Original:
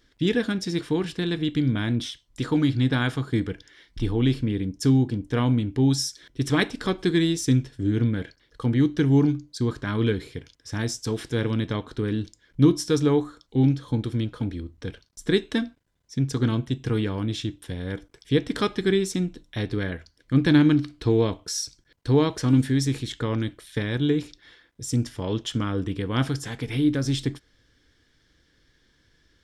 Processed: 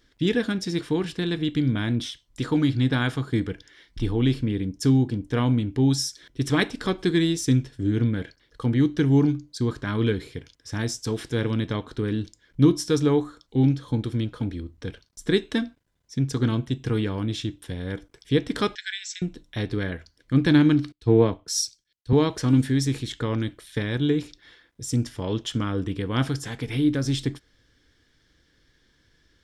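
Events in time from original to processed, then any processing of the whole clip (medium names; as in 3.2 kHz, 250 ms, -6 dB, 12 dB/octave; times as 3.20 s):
18.75–19.22 s: brick-wall FIR band-pass 1.4–8.1 kHz
20.92–22.13 s: three bands expanded up and down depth 100%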